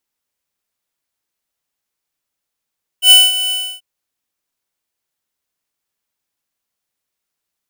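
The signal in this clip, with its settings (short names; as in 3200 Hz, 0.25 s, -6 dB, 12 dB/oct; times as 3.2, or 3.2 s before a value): ADSR square 2990 Hz, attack 89 ms, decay 0.206 s, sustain -13.5 dB, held 0.49 s, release 0.296 s -4.5 dBFS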